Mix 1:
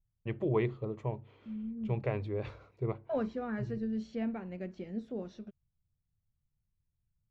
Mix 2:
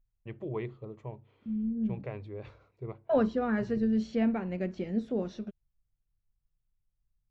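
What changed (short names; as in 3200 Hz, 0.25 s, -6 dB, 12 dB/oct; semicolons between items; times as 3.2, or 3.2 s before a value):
first voice -6.0 dB; second voice +7.5 dB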